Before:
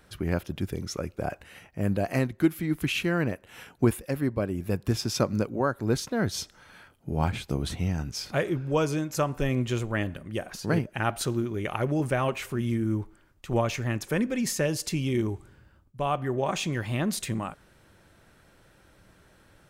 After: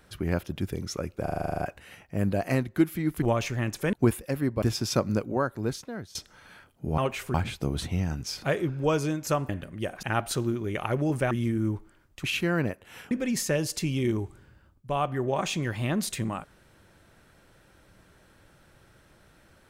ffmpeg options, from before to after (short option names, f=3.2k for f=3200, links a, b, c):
-filter_complex "[0:a]asplit=21[a][b][c][d][e][f][g][h][i][j][k][l][m][n][o][p][q][r][s][t][u];[a]atrim=end=1.272[v];[b]atrim=start=1.228:end=1.272[w];[c]atrim=start=1.228:end=1.272[x];[d]atrim=start=1.228:end=1.272[y];[e]atrim=start=1.228:end=1.272[z];[f]atrim=start=1.228:end=1.272[aa];[g]atrim=start=1.228:end=1.272[ab];[h]atrim=start=1.228:end=1.272[ac];[i]atrim=start=1.228:end=1.272[ad];[j]atrim=start=1.228:end=2.862[ae];[k]atrim=start=13.498:end=14.212[af];[l]atrim=start=3.728:end=4.422[ag];[m]atrim=start=4.858:end=6.39,asetpts=PTS-STARTPTS,afade=t=out:st=0.722:d=0.81:silence=0.0841395[ah];[n]atrim=start=6.39:end=7.222,asetpts=PTS-STARTPTS,afade=t=in:d=0.004:c=hsin:silence=0.0841395[ai];[o]atrim=start=12.208:end=12.572[aj];[p]atrim=start=7.218:end=9.372[ak];[q]atrim=start=10.018:end=10.562[al];[r]atrim=start=10.928:end=12.212[am];[s]atrim=start=12.568:end=13.502[an];[t]atrim=start=2.858:end=3.732[ao];[u]atrim=start=14.208[ap];[v][w]acrossfade=d=0.004:c1=hsin:c2=hsin[aq];[aq][x]acrossfade=d=0.004:c1=hsin:c2=hsin[ar];[ar][y]acrossfade=d=0.004:c1=hsin:c2=hsin[as];[as][z]acrossfade=d=0.004:c1=hsin:c2=hsin[at];[at][aa]acrossfade=d=0.004:c1=hsin:c2=hsin[au];[au][ab]acrossfade=d=0.004:c1=hsin:c2=hsin[av];[av][ac]acrossfade=d=0.004:c1=hsin:c2=hsin[aw];[aw][ad]acrossfade=d=0.004:c1=hsin:c2=hsin[ax];[ax][ae]acrossfade=d=0.004:c1=hsin:c2=hsin[ay];[ay][af]acrossfade=d=0.004:c1=hsin:c2=hsin[az];[az][ag]acrossfade=d=0.004:c1=hsin:c2=hsin[ba];[ah][ai]concat=n=2:v=0:a=1[bb];[ba][bb]acrossfade=d=0.004:c1=hsin:c2=hsin[bc];[bc][aj]acrossfade=d=0.004:c1=hsin:c2=hsin[bd];[bd][ak]acrossfade=d=0.004:c1=hsin:c2=hsin[be];[be][al]acrossfade=d=0.004:c1=hsin:c2=hsin[bf];[bf][am]acrossfade=d=0.004:c1=hsin:c2=hsin[bg];[bg][an]acrossfade=d=0.004:c1=hsin:c2=hsin[bh];[bh][ao]acrossfade=d=0.004:c1=hsin:c2=hsin[bi];[bi][ap]acrossfade=d=0.004:c1=hsin:c2=hsin"